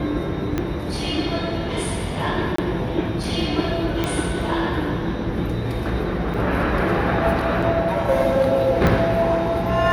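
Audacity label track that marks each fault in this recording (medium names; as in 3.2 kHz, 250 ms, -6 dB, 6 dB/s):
0.580000	0.580000	pop -10 dBFS
2.560000	2.580000	dropout 24 ms
4.040000	4.040000	pop -9 dBFS
6.340000	6.340000	dropout 4.5 ms
7.620000	7.630000	dropout 5.3 ms
8.870000	8.870000	pop -7 dBFS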